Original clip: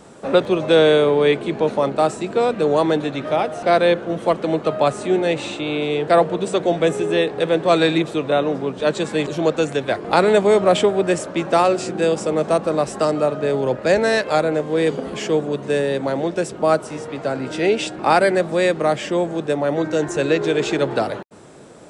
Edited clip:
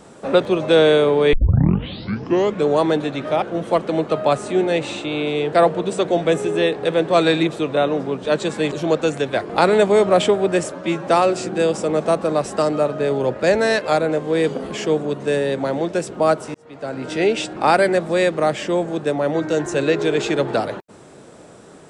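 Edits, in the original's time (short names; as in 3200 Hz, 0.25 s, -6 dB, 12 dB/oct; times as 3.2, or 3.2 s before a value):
1.33 tape start 1.35 s
3.42–3.97 cut
11.25–11.5 stretch 1.5×
16.97–17.55 fade in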